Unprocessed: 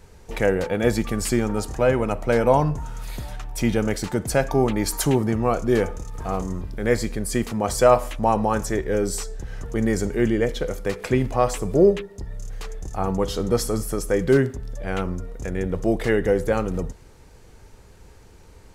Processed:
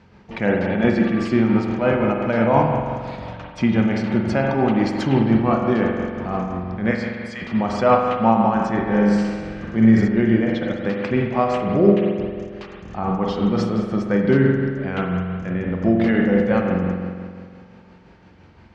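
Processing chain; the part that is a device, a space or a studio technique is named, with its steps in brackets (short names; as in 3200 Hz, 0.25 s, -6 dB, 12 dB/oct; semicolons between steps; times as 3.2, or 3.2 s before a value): 6.91–7.42 HPF 990 Hz 24 dB/oct; combo amplifier with spring reverb and tremolo (spring tank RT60 2 s, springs 44 ms, chirp 55 ms, DRR 0 dB; tremolo 5.8 Hz, depth 33%; speaker cabinet 100–4300 Hz, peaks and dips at 210 Hz +8 dB, 450 Hz -8 dB, 3800 Hz -4 dB); 8.81–10.08 flutter echo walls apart 10.8 m, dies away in 1 s; gain +2 dB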